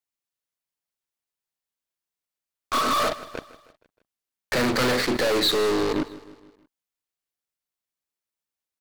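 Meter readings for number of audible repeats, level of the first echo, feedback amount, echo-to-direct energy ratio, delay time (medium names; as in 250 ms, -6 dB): 4, -18.0 dB, 53%, -16.5 dB, 157 ms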